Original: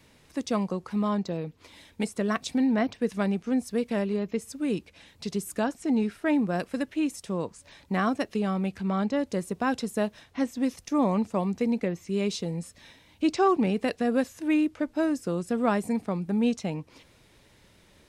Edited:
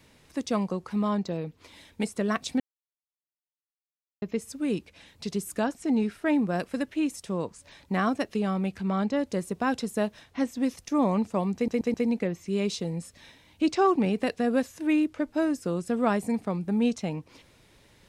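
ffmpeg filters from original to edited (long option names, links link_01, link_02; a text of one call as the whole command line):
ffmpeg -i in.wav -filter_complex "[0:a]asplit=6[link_01][link_02][link_03][link_04][link_05][link_06];[link_01]atrim=end=2.6,asetpts=PTS-STARTPTS,afade=type=out:start_time=2.596:duration=0.004:curve=hsin[link_07];[link_02]atrim=start=2.6:end=4.22,asetpts=PTS-STARTPTS,volume=0[link_08];[link_03]atrim=start=4.22:end=11.682,asetpts=PTS-STARTPTS,afade=type=in:duration=0.004:curve=hsin[link_09];[link_04]atrim=start=11.548:end=11.682[link_10];[link_05]atrim=start=11.548:end=11.682[link_11];[link_06]atrim=start=11.548[link_12];[link_07][link_08][link_09]concat=n=3:v=0:a=1[link_13];[link_13][link_10]acrossfade=duration=0.004:curve1=hsin:curve2=hsin[link_14];[link_14][link_11]acrossfade=duration=0.004:curve1=hsin:curve2=hsin[link_15];[link_15][link_12]acrossfade=duration=0.004:curve1=hsin:curve2=hsin" out.wav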